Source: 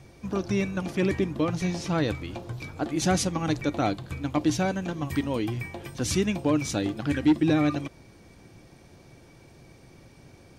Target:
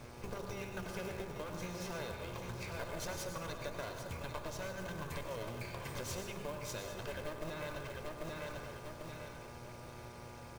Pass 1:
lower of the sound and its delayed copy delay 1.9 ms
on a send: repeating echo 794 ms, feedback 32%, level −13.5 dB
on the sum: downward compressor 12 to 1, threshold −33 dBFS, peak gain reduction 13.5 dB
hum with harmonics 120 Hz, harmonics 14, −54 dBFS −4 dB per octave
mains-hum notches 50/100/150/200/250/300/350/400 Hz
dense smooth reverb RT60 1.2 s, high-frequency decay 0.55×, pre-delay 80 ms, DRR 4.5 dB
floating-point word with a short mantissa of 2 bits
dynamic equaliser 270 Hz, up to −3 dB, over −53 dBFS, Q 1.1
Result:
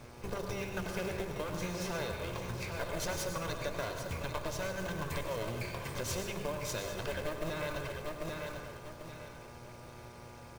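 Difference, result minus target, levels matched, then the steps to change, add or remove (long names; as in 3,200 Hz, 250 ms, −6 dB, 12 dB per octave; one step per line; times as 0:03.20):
downward compressor: peak gain reduction −5.5 dB
change: downward compressor 12 to 1, threshold −39 dBFS, peak gain reduction 19 dB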